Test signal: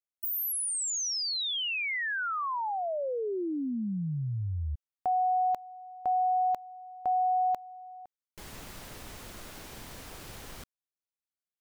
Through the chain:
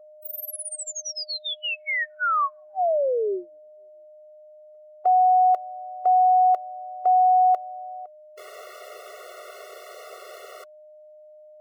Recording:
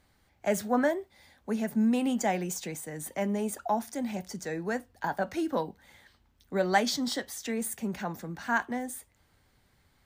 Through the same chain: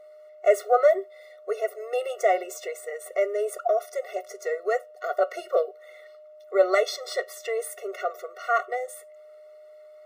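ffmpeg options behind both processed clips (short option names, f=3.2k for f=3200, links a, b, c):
-af "aeval=exprs='val(0)+0.00158*sin(2*PI*610*n/s)':c=same,equalizer=f=880:w=0.4:g=11.5,afftfilt=real='re*eq(mod(floor(b*sr/1024/370),2),1)':imag='im*eq(mod(floor(b*sr/1024/370),2),1)':win_size=1024:overlap=0.75"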